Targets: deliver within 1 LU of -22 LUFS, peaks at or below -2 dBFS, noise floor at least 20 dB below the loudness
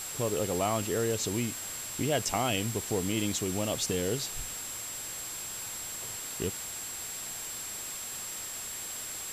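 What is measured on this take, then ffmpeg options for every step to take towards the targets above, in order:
steady tone 7600 Hz; tone level -39 dBFS; noise floor -39 dBFS; noise floor target -53 dBFS; loudness -32.5 LUFS; peak -16.0 dBFS; loudness target -22.0 LUFS
-> -af "bandreject=f=7.6k:w=30"
-af "afftdn=nr=14:nf=-39"
-af "volume=10.5dB"

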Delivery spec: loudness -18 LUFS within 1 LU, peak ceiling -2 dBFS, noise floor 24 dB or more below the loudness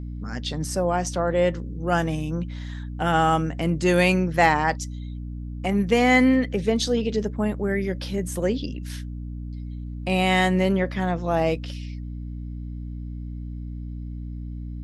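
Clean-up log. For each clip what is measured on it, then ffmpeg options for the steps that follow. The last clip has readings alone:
hum 60 Hz; harmonics up to 300 Hz; hum level -31 dBFS; loudness -23.0 LUFS; peak -3.5 dBFS; loudness target -18.0 LUFS
-> -af "bandreject=f=60:t=h:w=6,bandreject=f=120:t=h:w=6,bandreject=f=180:t=h:w=6,bandreject=f=240:t=h:w=6,bandreject=f=300:t=h:w=6"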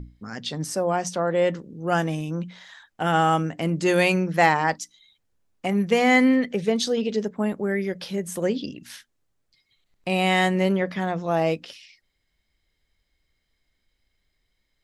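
hum none; loudness -23.5 LUFS; peak -4.0 dBFS; loudness target -18.0 LUFS
-> -af "volume=5.5dB,alimiter=limit=-2dB:level=0:latency=1"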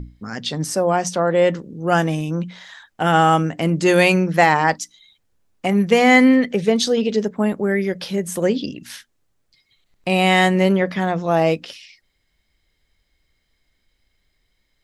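loudness -18.0 LUFS; peak -2.0 dBFS; noise floor -69 dBFS

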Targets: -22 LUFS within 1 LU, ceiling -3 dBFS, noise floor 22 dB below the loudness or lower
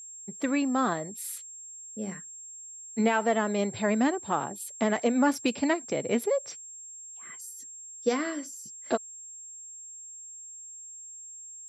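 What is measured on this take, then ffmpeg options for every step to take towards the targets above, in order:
steady tone 7500 Hz; tone level -42 dBFS; loudness -29.5 LUFS; peak -13.0 dBFS; loudness target -22.0 LUFS
-> -af "bandreject=f=7.5k:w=30"
-af "volume=7.5dB"

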